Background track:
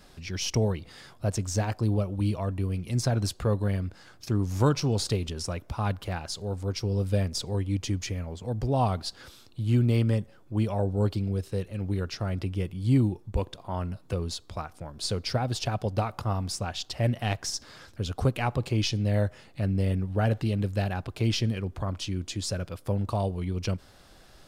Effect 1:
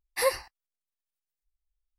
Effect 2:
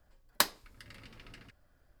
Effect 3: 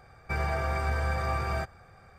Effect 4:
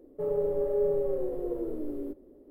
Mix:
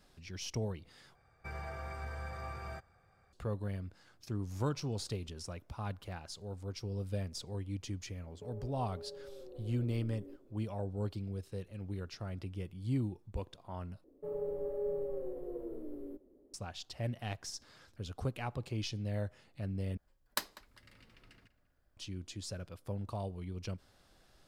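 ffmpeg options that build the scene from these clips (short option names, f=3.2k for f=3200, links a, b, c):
-filter_complex "[4:a]asplit=2[a][b];[0:a]volume=-11.5dB[c];[a]acompressor=threshold=-36dB:ratio=6:attack=3.2:release=140:knee=1:detection=peak[d];[2:a]asplit=2[e][f];[f]adelay=196,lowpass=f=3.1k:p=1,volume=-17dB,asplit=2[g][h];[h]adelay=196,lowpass=f=3.1k:p=1,volume=0.27,asplit=2[i][j];[j]adelay=196,lowpass=f=3.1k:p=1,volume=0.27[k];[e][g][i][k]amix=inputs=4:normalize=0[l];[c]asplit=4[m][n][o][p];[m]atrim=end=1.154[q];[3:a]atrim=end=2.18,asetpts=PTS-STARTPTS,volume=-13.5dB[r];[n]atrim=start=3.326:end=14.044[s];[b]atrim=end=2.5,asetpts=PTS-STARTPTS,volume=-9.5dB[t];[o]atrim=start=16.536:end=19.974[u];[l]atrim=end=2,asetpts=PTS-STARTPTS,volume=-8.5dB[v];[p]atrim=start=21.966[w];[d]atrim=end=2.5,asetpts=PTS-STARTPTS,volume=-10dB,afade=t=in:d=0.004:c=hsin,afade=t=out:st=2.496:d=0.004:c=hsin,adelay=8230[x];[q][r]acrossfade=d=0.004:c1=hsin:c2=hsin[y];[y][s]acrossfade=d=0.004:c1=hsin:c2=hsin[z];[z][t]acrossfade=d=0.004:c1=hsin:c2=hsin[aa];[aa][u]acrossfade=d=0.004:c1=hsin:c2=hsin[ab];[ab][v]acrossfade=d=0.004:c1=hsin:c2=hsin[ac];[ac][w]acrossfade=d=0.004:c1=hsin:c2=hsin[ad];[ad][x]amix=inputs=2:normalize=0"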